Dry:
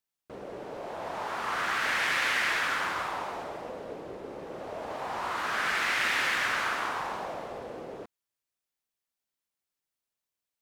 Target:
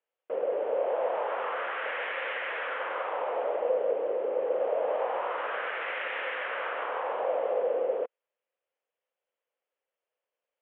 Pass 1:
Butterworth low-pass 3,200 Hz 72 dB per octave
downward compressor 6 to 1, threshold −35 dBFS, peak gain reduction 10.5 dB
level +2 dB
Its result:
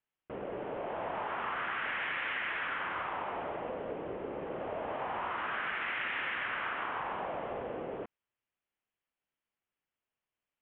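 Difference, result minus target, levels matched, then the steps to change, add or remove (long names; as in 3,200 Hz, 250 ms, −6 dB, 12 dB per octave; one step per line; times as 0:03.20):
500 Hz band −6.0 dB
add after downward compressor: high-pass with resonance 510 Hz, resonance Q 6.2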